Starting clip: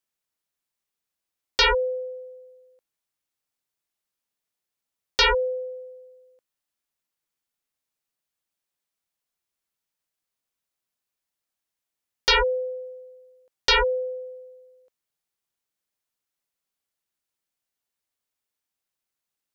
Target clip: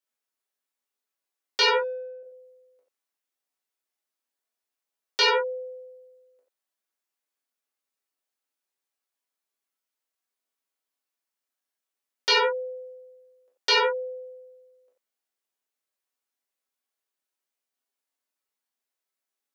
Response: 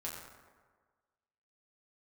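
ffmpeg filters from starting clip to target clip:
-filter_complex "[0:a]highpass=frequency=260:width=0.5412,highpass=frequency=260:width=1.3066,asettb=1/sr,asplit=3[link_01][link_02][link_03];[link_01]atrim=end=1.744[link_04];[link_02]atrim=start=1.74:end=2.23,asetpts=PTS-STARTPTS,afade=type=in:duration=0.004:curve=qsin,afade=type=out:start_time=0.486:duration=0.004:curve=qsin,adynamicsmooth=sensitivity=3:basefreq=1600[link_05];[link_03]atrim=start=2.226[link_06];[link_04][link_05]acrossfade=duration=0.004:curve1=hsin:curve2=qsin[link_07];[link_07][link_06]acrossfade=duration=0.004:curve1=qsin:curve2=hsin[link_08];[1:a]atrim=start_sample=2205,atrim=end_sample=4410[link_09];[link_08][link_09]afir=irnorm=-1:irlink=0"

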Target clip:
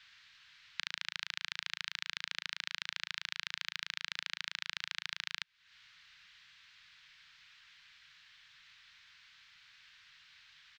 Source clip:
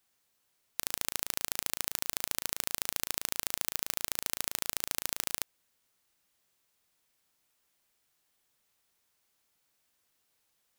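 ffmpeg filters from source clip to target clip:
ffmpeg -i in.wav -af "acompressor=threshold=-46dB:ratio=12,firequalizer=gain_entry='entry(160,0);entry(300,-28);entry(570,-26);entry(920,-2);entry(1600,13);entry(3900,11);entry(10000,-27)':delay=0.05:min_phase=1,volume=11dB" out.wav

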